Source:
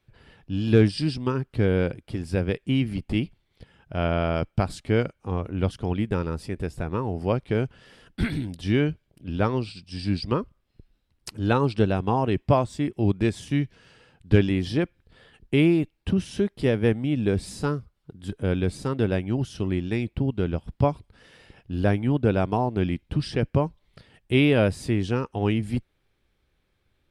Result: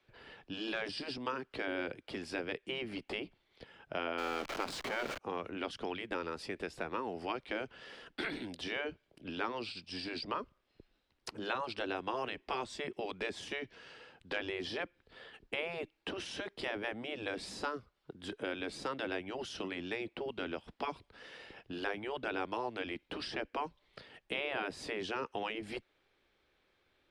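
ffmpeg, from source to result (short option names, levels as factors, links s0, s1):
-filter_complex "[0:a]asettb=1/sr,asplit=3[s0][s1][s2];[s0]atrim=end=4.184[s3];[s1]atrim=start=4.18:end=5.18,asetpts=PTS-STARTPTS,afade=t=in:d=0.004:c=qsin,afade=t=out:st=0.996:d=0.004:c=qsin,aeval=exprs='val(0)+0.5*0.0501*sgn(val(0))':c=same[s4];[s2]atrim=start=5.176[s5];[s3][s4]acrossfade=d=0.004:c1=hsin:c2=qsin[s6];[s6][s5]acrossfade=d=0.004:c1=qsin:c2=hsin,afftfilt=real='re*lt(hypot(re,im),0.316)':imag='im*lt(hypot(re,im),0.316)':win_size=1024:overlap=0.75,acrossover=split=240|1400[s7][s8][s9];[s7]acompressor=threshold=0.00708:ratio=4[s10];[s8]acompressor=threshold=0.0112:ratio=4[s11];[s9]acompressor=threshold=0.00794:ratio=4[s12];[s10][s11][s12]amix=inputs=3:normalize=0,acrossover=split=280 6000:gain=0.178 1 0.224[s13][s14][s15];[s13][s14][s15]amix=inputs=3:normalize=0,volume=1.26"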